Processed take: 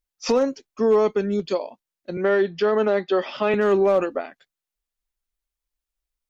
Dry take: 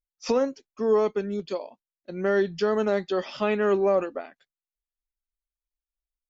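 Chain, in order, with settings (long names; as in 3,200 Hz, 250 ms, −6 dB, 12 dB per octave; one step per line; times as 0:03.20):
hard clipping −15.5 dBFS, distortion −27 dB
0:02.17–0:03.54: three-way crossover with the lows and the highs turned down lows −14 dB, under 210 Hz, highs −17 dB, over 4,200 Hz
brickwall limiter −18.5 dBFS, peak gain reduction 4.5 dB
level +6.5 dB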